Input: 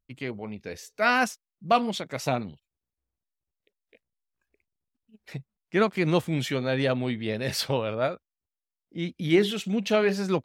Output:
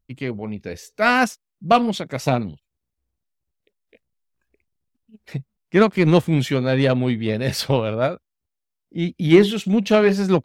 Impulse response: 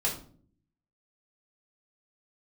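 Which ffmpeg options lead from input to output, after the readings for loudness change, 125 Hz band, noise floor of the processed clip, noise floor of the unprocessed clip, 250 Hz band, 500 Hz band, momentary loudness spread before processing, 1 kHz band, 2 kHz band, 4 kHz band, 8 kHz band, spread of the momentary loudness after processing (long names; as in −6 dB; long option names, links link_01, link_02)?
+7.0 dB, +9.5 dB, −81 dBFS, below −85 dBFS, +8.5 dB, +7.0 dB, 19 LU, +6.0 dB, +5.0 dB, +4.0 dB, +3.5 dB, 18 LU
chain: -af "lowshelf=frequency=390:gain=6.5,aeval=exprs='0.501*(cos(1*acos(clip(val(0)/0.501,-1,1)))-cos(1*PI/2))+0.0158*(cos(7*acos(clip(val(0)/0.501,-1,1)))-cos(7*PI/2))':channel_layout=same,volume=5dB"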